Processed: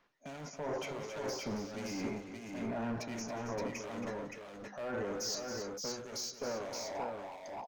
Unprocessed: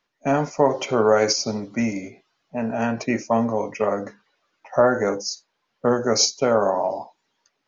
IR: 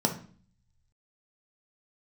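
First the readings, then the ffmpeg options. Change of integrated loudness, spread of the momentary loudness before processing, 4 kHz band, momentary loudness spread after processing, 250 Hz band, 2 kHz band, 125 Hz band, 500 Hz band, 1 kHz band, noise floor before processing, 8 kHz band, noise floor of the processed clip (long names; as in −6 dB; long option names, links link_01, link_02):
−18.0 dB, 12 LU, −15.5 dB, 8 LU, −15.5 dB, −14.5 dB, −14.5 dB, −18.5 dB, −18.0 dB, −75 dBFS, can't be measured, −51 dBFS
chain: -filter_complex "[0:a]areverse,acompressor=threshold=-29dB:ratio=8,areverse,alimiter=level_in=7dB:limit=-24dB:level=0:latency=1:release=14,volume=-7dB,asoftclip=type=hard:threshold=-38.5dB,acrossover=split=2400[link_01][link_02];[link_01]aeval=exprs='val(0)*(1-0.7/2+0.7/2*cos(2*PI*1.4*n/s))':channel_layout=same[link_03];[link_02]aeval=exprs='val(0)*(1-0.7/2-0.7/2*cos(2*PI*1.4*n/s))':channel_layout=same[link_04];[link_03][link_04]amix=inputs=2:normalize=0,aecho=1:1:180|275|572:0.141|0.316|0.631,volume=5dB"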